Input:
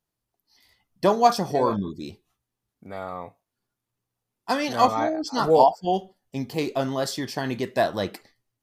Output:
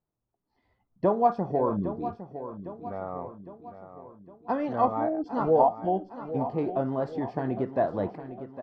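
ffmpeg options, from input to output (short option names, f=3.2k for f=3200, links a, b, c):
-filter_complex "[0:a]lowpass=1k,asplit=2[a][b];[b]acompressor=threshold=-28dB:ratio=6,volume=-2dB[c];[a][c]amix=inputs=2:normalize=0,aecho=1:1:808|1616|2424|3232|4040:0.251|0.131|0.0679|0.0353|0.0184,volume=-5dB"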